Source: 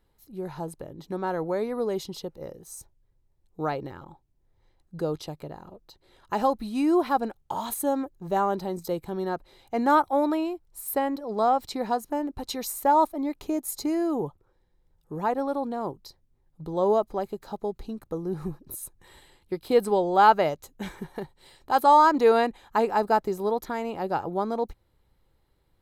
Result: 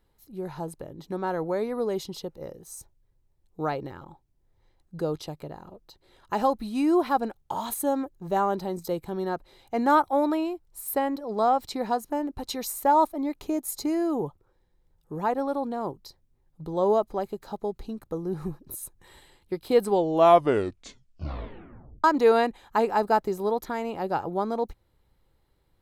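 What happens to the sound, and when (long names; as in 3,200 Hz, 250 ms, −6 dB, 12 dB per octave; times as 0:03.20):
0:19.88: tape stop 2.16 s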